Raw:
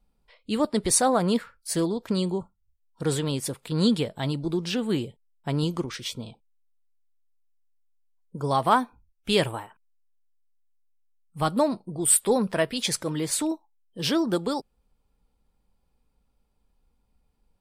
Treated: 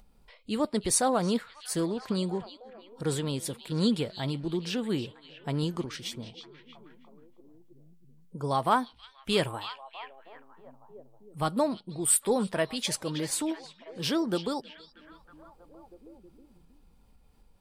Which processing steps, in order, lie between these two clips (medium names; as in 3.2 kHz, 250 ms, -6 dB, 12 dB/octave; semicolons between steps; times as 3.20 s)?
upward compressor, threshold -43 dBFS; repeats whose band climbs or falls 319 ms, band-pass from 3.5 kHz, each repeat -0.7 oct, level -9 dB; trim -4 dB